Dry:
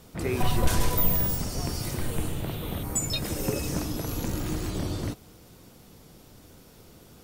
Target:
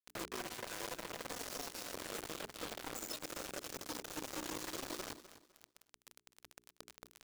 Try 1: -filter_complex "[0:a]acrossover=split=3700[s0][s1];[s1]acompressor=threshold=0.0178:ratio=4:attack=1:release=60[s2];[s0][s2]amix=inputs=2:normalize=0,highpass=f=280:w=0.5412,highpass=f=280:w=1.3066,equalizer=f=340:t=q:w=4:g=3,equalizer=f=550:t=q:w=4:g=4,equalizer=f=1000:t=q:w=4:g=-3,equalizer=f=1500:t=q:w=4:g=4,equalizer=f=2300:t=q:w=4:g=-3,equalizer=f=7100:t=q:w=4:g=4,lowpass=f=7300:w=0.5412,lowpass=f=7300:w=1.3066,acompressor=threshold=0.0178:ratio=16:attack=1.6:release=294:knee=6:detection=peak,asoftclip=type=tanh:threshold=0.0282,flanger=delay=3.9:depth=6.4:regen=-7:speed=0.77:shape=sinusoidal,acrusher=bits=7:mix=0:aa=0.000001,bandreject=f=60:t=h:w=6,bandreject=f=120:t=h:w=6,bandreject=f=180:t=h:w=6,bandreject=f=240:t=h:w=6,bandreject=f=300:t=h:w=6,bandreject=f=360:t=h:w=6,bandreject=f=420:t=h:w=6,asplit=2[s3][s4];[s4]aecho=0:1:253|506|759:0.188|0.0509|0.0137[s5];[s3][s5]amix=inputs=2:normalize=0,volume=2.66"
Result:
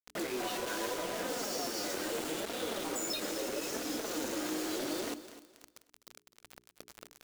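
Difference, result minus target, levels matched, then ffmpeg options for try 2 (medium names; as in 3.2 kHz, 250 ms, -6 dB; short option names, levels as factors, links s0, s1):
compression: peak gain reduction -8.5 dB
-filter_complex "[0:a]acrossover=split=3700[s0][s1];[s1]acompressor=threshold=0.0178:ratio=4:attack=1:release=60[s2];[s0][s2]amix=inputs=2:normalize=0,highpass=f=280:w=0.5412,highpass=f=280:w=1.3066,equalizer=f=340:t=q:w=4:g=3,equalizer=f=550:t=q:w=4:g=4,equalizer=f=1000:t=q:w=4:g=-3,equalizer=f=1500:t=q:w=4:g=4,equalizer=f=2300:t=q:w=4:g=-3,equalizer=f=7100:t=q:w=4:g=4,lowpass=f=7300:w=0.5412,lowpass=f=7300:w=1.3066,acompressor=threshold=0.00631:ratio=16:attack=1.6:release=294:knee=6:detection=peak,asoftclip=type=tanh:threshold=0.0282,flanger=delay=3.9:depth=6.4:regen=-7:speed=0.77:shape=sinusoidal,acrusher=bits=7:mix=0:aa=0.000001,bandreject=f=60:t=h:w=6,bandreject=f=120:t=h:w=6,bandreject=f=180:t=h:w=6,bandreject=f=240:t=h:w=6,bandreject=f=300:t=h:w=6,bandreject=f=360:t=h:w=6,bandreject=f=420:t=h:w=6,asplit=2[s3][s4];[s4]aecho=0:1:253|506|759:0.188|0.0509|0.0137[s5];[s3][s5]amix=inputs=2:normalize=0,volume=2.66"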